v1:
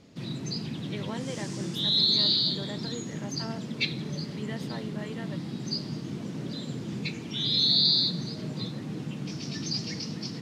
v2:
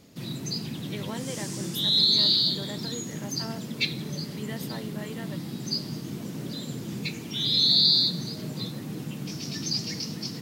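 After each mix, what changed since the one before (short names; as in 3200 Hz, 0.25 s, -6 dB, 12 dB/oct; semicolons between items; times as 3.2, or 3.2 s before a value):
master: remove air absorption 77 m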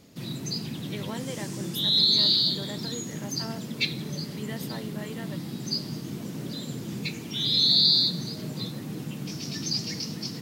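second sound -5.0 dB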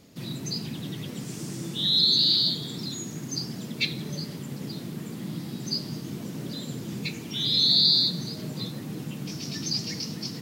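speech: muted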